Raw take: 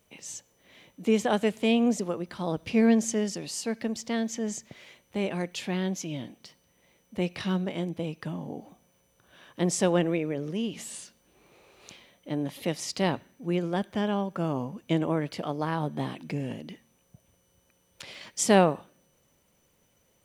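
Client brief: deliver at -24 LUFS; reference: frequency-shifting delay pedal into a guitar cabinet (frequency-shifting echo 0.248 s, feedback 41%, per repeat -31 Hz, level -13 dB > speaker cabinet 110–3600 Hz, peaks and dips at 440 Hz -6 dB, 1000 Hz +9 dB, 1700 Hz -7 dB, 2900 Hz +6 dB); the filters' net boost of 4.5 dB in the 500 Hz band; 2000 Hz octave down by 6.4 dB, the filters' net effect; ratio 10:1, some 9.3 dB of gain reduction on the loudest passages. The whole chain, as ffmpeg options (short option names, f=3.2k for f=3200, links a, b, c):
-filter_complex "[0:a]equalizer=f=500:t=o:g=9,equalizer=f=2k:t=o:g=-8,acompressor=threshold=-21dB:ratio=10,asplit=5[a][b][c][d][e];[b]adelay=248,afreqshift=-31,volume=-13dB[f];[c]adelay=496,afreqshift=-62,volume=-20.7dB[g];[d]adelay=744,afreqshift=-93,volume=-28.5dB[h];[e]adelay=992,afreqshift=-124,volume=-36.2dB[i];[a][f][g][h][i]amix=inputs=5:normalize=0,highpass=110,equalizer=f=440:t=q:w=4:g=-6,equalizer=f=1k:t=q:w=4:g=9,equalizer=f=1.7k:t=q:w=4:g=-7,equalizer=f=2.9k:t=q:w=4:g=6,lowpass=f=3.6k:w=0.5412,lowpass=f=3.6k:w=1.3066,volume=6.5dB"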